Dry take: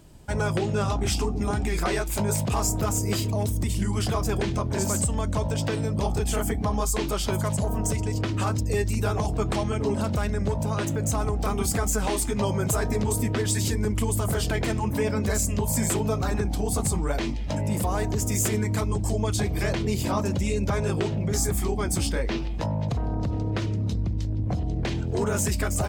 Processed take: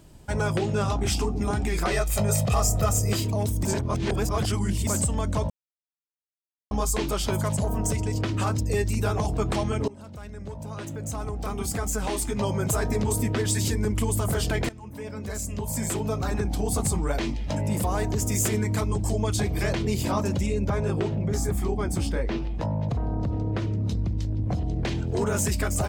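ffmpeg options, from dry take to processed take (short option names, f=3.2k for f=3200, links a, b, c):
-filter_complex "[0:a]asettb=1/sr,asplit=3[a][b][c];[a]atrim=end=1.914[d];[b]atrim=start=1.91:end=3.13,asetpts=PTS-STARTPTS,afade=t=in:d=0.004:c=qsin,afade=t=out:st=1.216:d=0.004:c=qsin,aecho=1:1:1.6:0.68,atrim=end_sample=53802[e];[c]atrim=start=3.126[f];[d][e]acrossfade=d=0.004:c1=hsin:c2=qsin[g];[g][f]acrossfade=d=0.004:c1=qsin:c2=hsin,asettb=1/sr,asplit=3[h][i][j];[h]atrim=end=20.464[k];[i]atrim=start=20.46:end=23.85,asetpts=PTS-STARTPTS,afade=t=in:d=0.004:c=qsin,afade=t=out:st=3.386:d=0.004:c=qsin,highshelf=f=2.2k:g=-8[l];[j]atrim=start=23.846[m];[k][l]acrossfade=d=0.004:c1=hsin:c2=qsin[n];[n][m]acrossfade=d=0.004:c1=qsin:c2=hsin,asplit=7[o][p][q][r][s][t][u];[o]atrim=end=3.652[v];[p]atrim=start=3.648:end=4.872,asetpts=PTS-STARTPTS,areverse[w];[q]atrim=start=4.868:end=5.5,asetpts=PTS-STARTPTS,afade=t=out:st=0.628:d=0.004:c=hsin[x];[r]atrim=start=5.5:end=6.71,asetpts=PTS-STARTPTS,volume=0[y];[s]atrim=start=6.71:end=9.88,asetpts=PTS-STARTPTS,afade=t=in:d=0.004:c=hsin,afade=t=out:st=3.166:d=0.004:c=hsin:silence=0.0944061[z];[t]atrim=start=9.88:end=14.69,asetpts=PTS-STARTPTS,afade=t=in:d=3.02:silence=0.0944061,afade=t=out:st=4.806:d=0.004:c=hsin:silence=0.105925[aa];[u]atrim=start=14.69,asetpts=PTS-STARTPTS,afade=t=in:d=1.91:silence=0.105925[ab];[v][w]acrossfade=d=0.004:c1=hsin:c2=hsin[ac];[x][y][z][aa][ab]concat=n=5:v=0:a=1[ad];[ac][ad]acrossfade=d=0.004:c1=hsin:c2=hsin"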